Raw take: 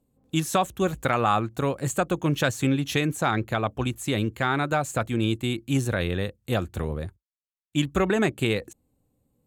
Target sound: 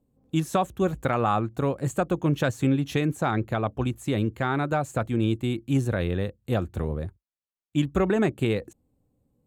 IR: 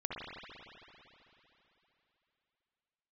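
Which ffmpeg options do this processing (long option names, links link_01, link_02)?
-af "tiltshelf=frequency=1400:gain=4.5,volume=-3.5dB"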